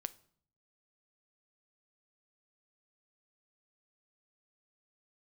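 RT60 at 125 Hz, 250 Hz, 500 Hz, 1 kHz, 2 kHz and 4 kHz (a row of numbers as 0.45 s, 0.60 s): 0.85 s, 0.80 s, 0.60 s, 0.55 s, 0.50 s, 0.45 s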